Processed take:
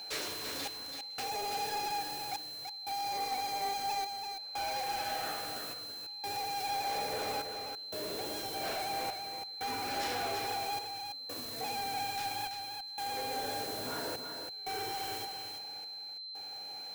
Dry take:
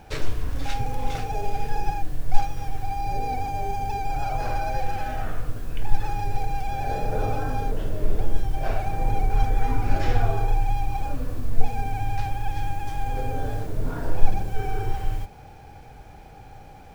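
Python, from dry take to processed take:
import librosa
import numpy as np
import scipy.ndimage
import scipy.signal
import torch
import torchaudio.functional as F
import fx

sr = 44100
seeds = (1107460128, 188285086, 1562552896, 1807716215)

p1 = scipy.signal.sosfilt(scipy.signal.butter(2, 340.0, 'highpass', fs=sr, output='sos'), x)
p2 = fx.high_shelf(p1, sr, hz=3100.0, db=11.5)
p3 = fx.quant_dither(p2, sr, seeds[0], bits=6, dither='none')
p4 = p2 + (p3 * 10.0 ** (-3.0 / 20.0))
p5 = 10.0 ** (-27.5 / 20.0) * np.tanh(p4 / 10.0 ** (-27.5 / 20.0))
p6 = fx.step_gate(p5, sr, bpm=89, pattern='xxxx...xxx', floor_db=-24.0, edge_ms=4.5)
p7 = p6 + 10.0 ** (-36.0 / 20.0) * np.sin(2.0 * np.pi * 4100.0 * np.arange(len(p6)) / sr)
p8 = p7 + fx.echo_single(p7, sr, ms=333, db=-6.5, dry=0)
y = p8 * 10.0 ** (-6.0 / 20.0)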